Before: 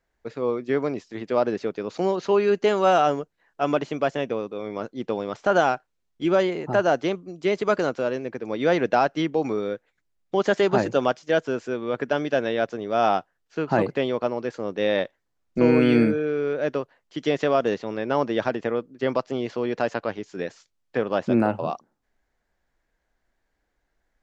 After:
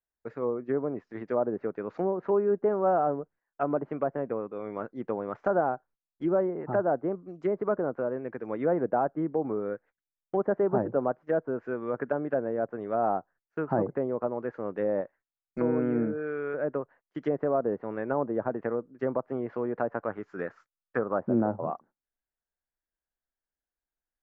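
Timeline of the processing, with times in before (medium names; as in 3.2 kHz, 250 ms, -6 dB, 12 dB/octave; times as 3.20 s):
15.01–16.54 s: tilt shelf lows -5 dB, about 1.1 kHz
20.10–21.19 s: peaking EQ 1.3 kHz +9.5 dB 0.52 oct
whole clip: gate -48 dBFS, range -18 dB; low-pass that closes with the level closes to 820 Hz, closed at -20 dBFS; resonant high shelf 2.4 kHz -13.5 dB, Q 1.5; trim -5 dB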